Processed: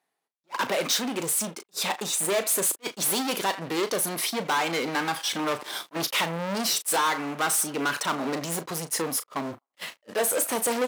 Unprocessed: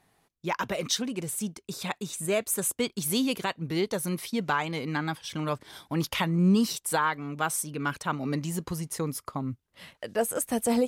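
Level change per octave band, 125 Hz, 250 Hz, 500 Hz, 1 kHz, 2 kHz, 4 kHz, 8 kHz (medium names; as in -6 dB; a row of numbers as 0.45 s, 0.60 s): -8.0 dB, -4.0 dB, +2.0 dB, +3.5 dB, +4.0 dB, +6.0 dB, +6.5 dB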